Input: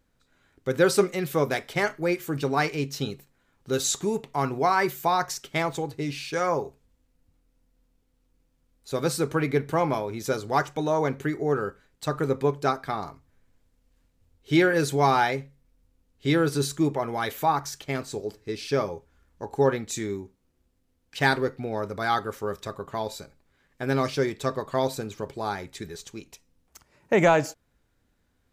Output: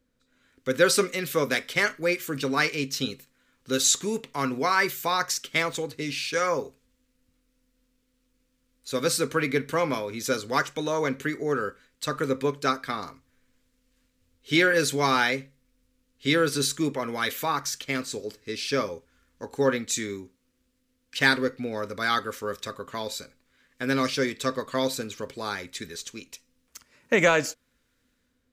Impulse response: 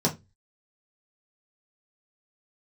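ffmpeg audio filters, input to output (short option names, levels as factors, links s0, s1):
-filter_complex "[0:a]equalizer=f=250:t=o:w=0.33:g=11,equalizer=f=500:t=o:w=0.33:g=8,equalizer=f=800:t=o:w=0.33:g=-7,acrossover=split=830|900[s0][s1][s2];[s2]dynaudnorm=f=130:g=7:m=2.82[s3];[s0][s1][s3]amix=inputs=3:normalize=0,equalizer=f=4200:w=0.39:g=3,volume=0.501"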